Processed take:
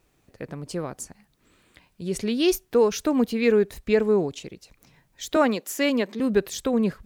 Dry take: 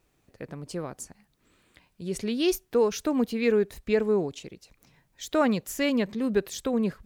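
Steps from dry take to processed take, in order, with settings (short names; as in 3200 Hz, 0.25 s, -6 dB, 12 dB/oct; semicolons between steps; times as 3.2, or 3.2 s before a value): 5.36–6.2 HPF 240 Hz 24 dB/oct; gain +3.5 dB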